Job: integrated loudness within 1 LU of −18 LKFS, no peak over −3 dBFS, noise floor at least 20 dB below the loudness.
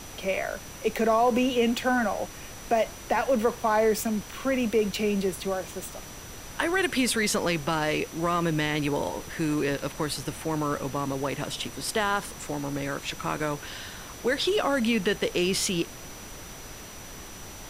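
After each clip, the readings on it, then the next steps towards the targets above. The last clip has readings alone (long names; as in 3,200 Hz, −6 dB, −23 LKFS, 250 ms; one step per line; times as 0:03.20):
interfering tone 5,900 Hz; level of the tone −48 dBFS; background noise floor −43 dBFS; target noise floor −47 dBFS; integrated loudness −27.0 LKFS; sample peak −10.0 dBFS; target loudness −18.0 LKFS
→ notch filter 5,900 Hz, Q 30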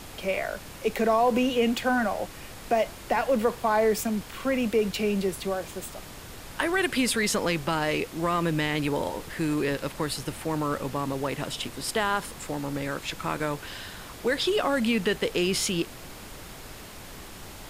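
interfering tone none found; background noise floor −43 dBFS; target noise floor −47 dBFS
→ noise reduction from a noise print 6 dB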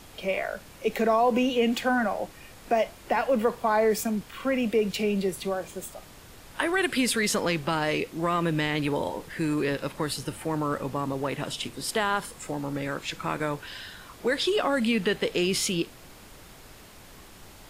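background noise floor −49 dBFS; integrated loudness −27.0 LKFS; sample peak −10.0 dBFS; target loudness −18.0 LKFS
→ level +9 dB
brickwall limiter −3 dBFS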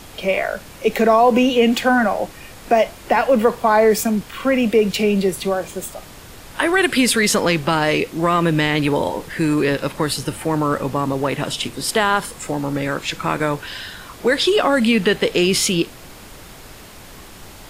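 integrated loudness −18.0 LKFS; sample peak −3.0 dBFS; background noise floor −40 dBFS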